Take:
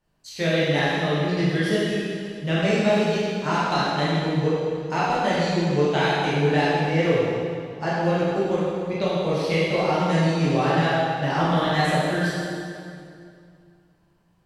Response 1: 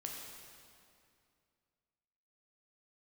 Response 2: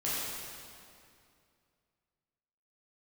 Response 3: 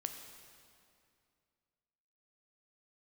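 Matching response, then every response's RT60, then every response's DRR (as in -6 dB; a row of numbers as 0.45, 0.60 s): 2; 2.4, 2.4, 2.4 s; -1.0, -9.5, 5.0 dB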